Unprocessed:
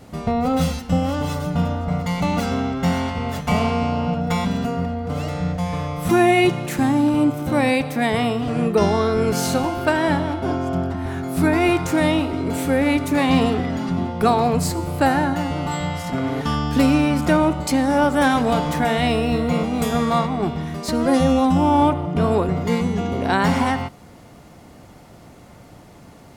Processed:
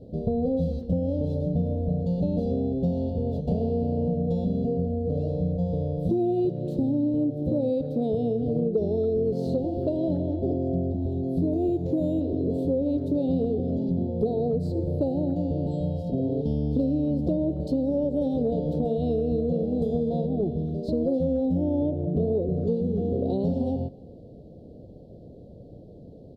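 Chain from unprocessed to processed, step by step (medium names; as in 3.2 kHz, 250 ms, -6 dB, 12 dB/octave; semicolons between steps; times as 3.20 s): elliptic band-stop 580–4100 Hz, stop band 50 dB; peaking EQ 460 Hz +6 dB 0.52 oct; compression 5:1, threshold -21 dBFS, peak gain reduction 11.5 dB; distance through air 500 m; speakerphone echo 280 ms, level -24 dB; 11.52–12.21 s: decimation joined by straight lines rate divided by 4×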